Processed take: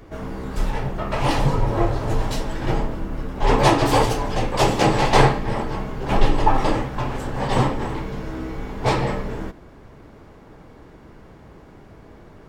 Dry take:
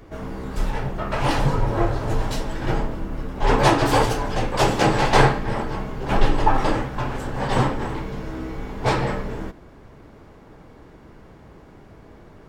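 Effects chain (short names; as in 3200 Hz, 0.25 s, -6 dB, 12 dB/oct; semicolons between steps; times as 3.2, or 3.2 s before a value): dynamic EQ 1500 Hz, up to -6 dB, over -42 dBFS, Q 4.8; gain +1 dB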